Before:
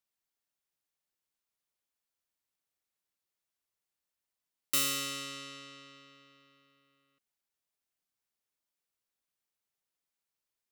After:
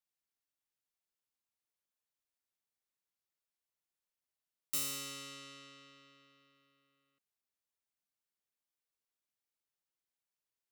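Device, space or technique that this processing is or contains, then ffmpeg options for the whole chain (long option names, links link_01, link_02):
one-band saturation: -filter_complex "[0:a]acrossover=split=240|4600[link_01][link_02][link_03];[link_02]asoftclip=type=tanh:threshold=-39.5dB[link_04];[link_01][link_04][link_03]amix=inputs=3:normalize=0,volume=-5.5dB"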